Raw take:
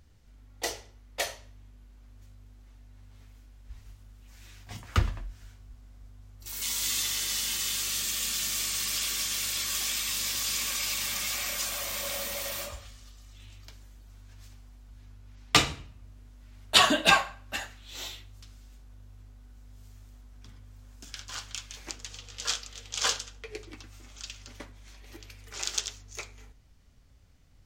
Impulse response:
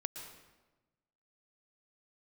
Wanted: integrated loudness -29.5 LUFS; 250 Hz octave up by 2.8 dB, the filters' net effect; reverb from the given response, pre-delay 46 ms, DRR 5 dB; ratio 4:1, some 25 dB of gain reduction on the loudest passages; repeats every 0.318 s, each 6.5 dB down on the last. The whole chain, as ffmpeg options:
-filter_complex "[0:a]equalizer=f=250:t=o:g=3.5,acompressor=threshold=-47dB:ratio=4,aecho=1:1:318|636|954|1272|1590|1908:0.473|0.222|0.105|0.0491|0.0231|0.0109,asplit=2[a][b];[1:a]atrim=start_sample=2205,adelay=46[c];[b][c]afir=irnorm=-1:irlink=0,volume=-4.5dB[d];[a][d]amix=inputs=2:normalize=0,volume=16dB"

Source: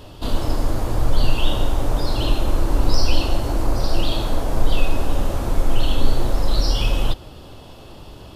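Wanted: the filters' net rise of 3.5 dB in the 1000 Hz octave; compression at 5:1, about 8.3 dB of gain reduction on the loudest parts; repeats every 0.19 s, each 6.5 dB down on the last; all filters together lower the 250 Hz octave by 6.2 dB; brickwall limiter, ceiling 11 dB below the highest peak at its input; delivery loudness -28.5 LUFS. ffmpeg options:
-af "equalizer=f=250:t=o:g=-9,equalizer=f=1k:t=o:g=5,acompressor=threshold=-17dB:ratio=5,alimiter=limit=-21.5dB:level=0:latency=1,aecho=1:1:190|380|570|760|950|1140:0.473|0.222|0.105|0.0491|0.0231|0.0109,volume=5.5dB"

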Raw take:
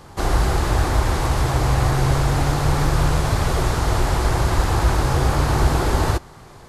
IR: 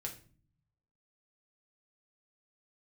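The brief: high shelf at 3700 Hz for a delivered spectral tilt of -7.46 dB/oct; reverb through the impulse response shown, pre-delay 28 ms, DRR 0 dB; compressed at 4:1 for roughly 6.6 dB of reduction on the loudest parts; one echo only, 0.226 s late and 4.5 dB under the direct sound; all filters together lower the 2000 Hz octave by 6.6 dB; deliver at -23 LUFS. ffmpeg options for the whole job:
-filter_complex "[0:a]equalizer=f=2k:t=o:g=-7.5,highshelf=f=3.7k:g=-6.5,acompressor=threshold=-21dB:ratio=4,aecho=1:1:226:0.596,asplit=2[a][b];[1:a]atrim=start_sample=2205,adelay=28[c];[b][c]afir=irnorm=-1:irlink=0,volume=1.5dB[d];[a][d]amix=inputs=2:normalize=0,volume=-3dB"

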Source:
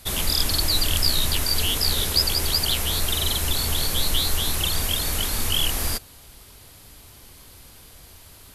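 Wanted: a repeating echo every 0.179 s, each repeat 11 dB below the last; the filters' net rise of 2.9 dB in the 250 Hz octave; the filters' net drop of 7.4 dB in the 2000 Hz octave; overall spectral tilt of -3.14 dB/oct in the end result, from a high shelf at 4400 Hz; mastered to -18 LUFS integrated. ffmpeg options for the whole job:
-af "equalizer=f=250:t=o:g=4,equalizer=f=2k:t=o:g=-8.5,highshelf=f=4.4k:g=-6.5,aecho=1:1:179|358|537:0.282|0.0789|0.0221,volume=7.5dB"

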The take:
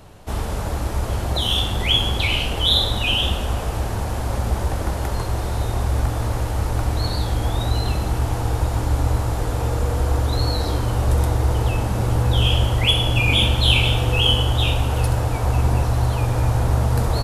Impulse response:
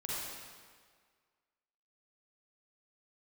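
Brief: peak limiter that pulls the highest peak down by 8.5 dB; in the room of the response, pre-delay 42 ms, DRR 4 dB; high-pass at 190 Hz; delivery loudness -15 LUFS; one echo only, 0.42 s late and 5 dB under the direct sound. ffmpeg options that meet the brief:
-filter_complex "[0:a]highpass=190,alimiter=limit=-13dB:level=0:latency=1,aecho=1:1:420:0.562,asplit=2[a][b];[1:a]atrim=start_sample=2205,adelay=42[c];[b][c]afir=irnorm=-1:irlink=0,volume=-7dB[d];[a][d]amix=inputs=2:normalize=0,volume=7.5dB"

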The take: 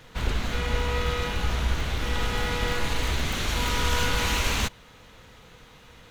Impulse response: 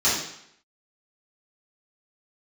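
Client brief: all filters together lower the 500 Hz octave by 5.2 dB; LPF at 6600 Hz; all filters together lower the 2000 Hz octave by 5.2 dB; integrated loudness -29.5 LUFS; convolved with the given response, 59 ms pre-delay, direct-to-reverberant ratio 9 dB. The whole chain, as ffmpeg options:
-filter_complex "[0:a]lowpass=6.6k,equalizer=f=500:t=o:g=-5.5,equalizer=f=2k:t=o:g=-6.5,asplit=2[a][b];[1:a]atrim=start_sample=2205,adelay=59[c];[b][c]afir=irnorm=-1:irlink=0,volume=-25dB[d];[a][d]amix=inputs=2:normalize=0,volume=-0.5dB"

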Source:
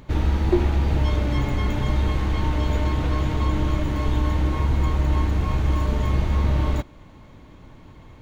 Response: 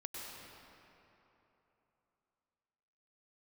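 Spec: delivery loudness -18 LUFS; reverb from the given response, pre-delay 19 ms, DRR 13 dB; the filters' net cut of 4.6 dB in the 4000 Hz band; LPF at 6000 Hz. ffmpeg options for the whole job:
-filter_complex "[0:a]lowpass=6k,equalizer=f=4k:t=o:g=-5.5,asplit=2[a][b];[1:a]atrim=start_sample=2205,adelay=19[c];[b][c]afir=irnorm=-1:irlink=0,volume=-12dB[d];[a][d]amix=inputs=2:normalize=0,volume=5dB"

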